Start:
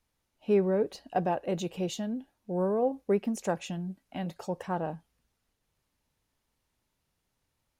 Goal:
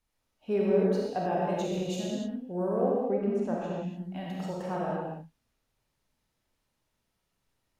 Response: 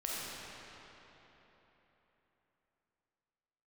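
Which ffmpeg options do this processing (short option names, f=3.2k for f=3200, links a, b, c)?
-filter_complex "[0:a]asettb=1/sr,asplit=3[a][b][c];[a]atrim=end=3.064[d];[b]atrim=start=3.06:end=3.85,asetpts=PTS-STARTPTS,afade=t=in:d=0.004:c=qsin,afade=t=out:st=0.786:d=0.004:c=qsin,lowpass=f=1k:p=1[e];[c]atrim=start=3.846[f];[d][e]acrossfade=d=0.004:c1=hsin:c2=qsin[g];[g][f]acrossfade=d=0.004:c1=qsin:c2=hsin[h];[1:a]atrim=start_sample=2205,afade=t=out:st=0.36:d=0.01,atrim=end_sample=16317[i];[h][i]afir=irnorm=-1:irlink=0,volume=-2dB"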